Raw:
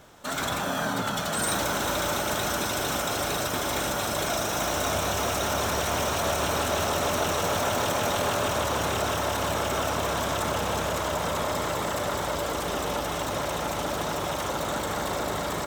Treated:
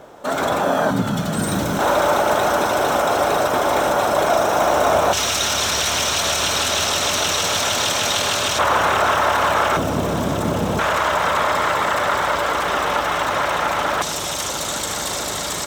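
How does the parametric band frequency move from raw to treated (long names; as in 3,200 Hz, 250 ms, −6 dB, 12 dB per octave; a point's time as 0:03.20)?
parametric band +14 dB 2.7 octaves
540 Hz
from 0:00.91 170 Hz
from 0:01.79 710 Hz
from 0:05.13 4,400 Hz
from 0:08.59 1,300 Hz
from 0:09.77 200 Hz
from 0:10.79 1,500 Hz
from 0:14.02 6,700 Hz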